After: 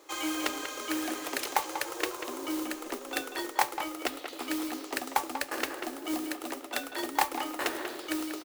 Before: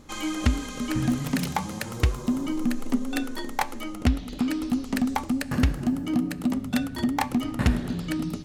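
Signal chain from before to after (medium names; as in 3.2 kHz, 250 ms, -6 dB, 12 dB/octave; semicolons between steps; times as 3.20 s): elliptic high-pass 330 Hz, stop band 40 dB; modulation noise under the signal 10 dB; speakerphone echo 190 ms, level -7 dB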